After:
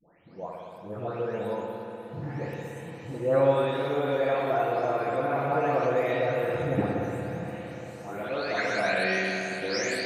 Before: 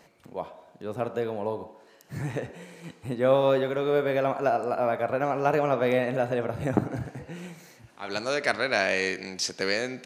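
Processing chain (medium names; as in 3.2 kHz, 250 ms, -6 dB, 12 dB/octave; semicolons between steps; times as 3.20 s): delay that grows with frequency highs late, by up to 520 ms; echo that smears into a reverb 606 ms, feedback 64%, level -14 dB; spring tank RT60 2.6 s, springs 58 ms, chirp 75 ms, DRR -0.5 dB; trim -2.5 dB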